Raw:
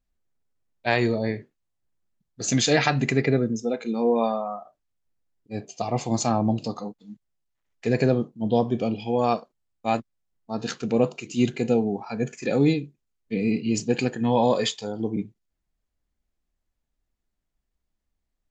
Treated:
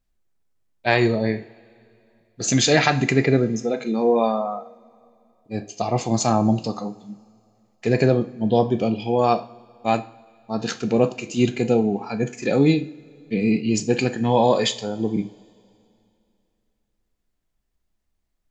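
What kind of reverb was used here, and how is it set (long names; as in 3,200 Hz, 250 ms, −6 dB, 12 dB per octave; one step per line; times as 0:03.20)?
coupled-rooms reverb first 0.44 s, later 2.7 s, from −19 dB, DRR 11 dB
level +3.5 dB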